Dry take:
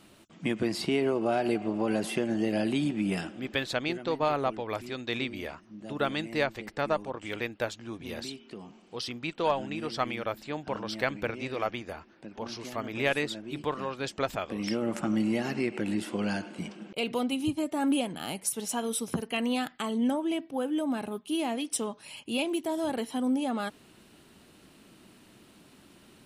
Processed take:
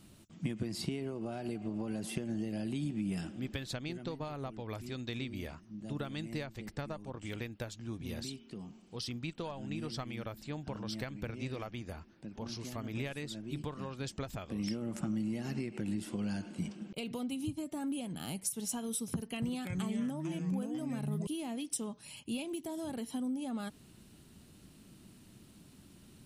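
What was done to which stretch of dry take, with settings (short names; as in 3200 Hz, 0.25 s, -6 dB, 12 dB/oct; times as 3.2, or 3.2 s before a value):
19.14–21.27 echoes that change speed 0.279 s, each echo -4 st, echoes 2, each echo -6 dB
whole clip: compressor, threshold -31 dBFS; tone controls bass +14 dB, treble +8 dB; gain -8.5 dB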